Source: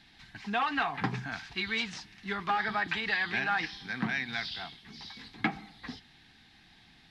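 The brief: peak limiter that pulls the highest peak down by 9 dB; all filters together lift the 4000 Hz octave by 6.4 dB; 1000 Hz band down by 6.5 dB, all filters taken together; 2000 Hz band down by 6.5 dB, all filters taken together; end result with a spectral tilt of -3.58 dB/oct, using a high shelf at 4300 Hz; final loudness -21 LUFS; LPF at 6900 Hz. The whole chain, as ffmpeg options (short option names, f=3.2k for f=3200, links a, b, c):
-af "lowpass=6.9k,equalizer=f=1k:t=o:g=-7.5,equalizer=f=2k:t=o:g=-9,equalizer=f=4k:t=o:g=8,highshelf=f=4.3k:g=6,volume=15.5dB,alimiter=limit=-10dB:level=0:latency=1"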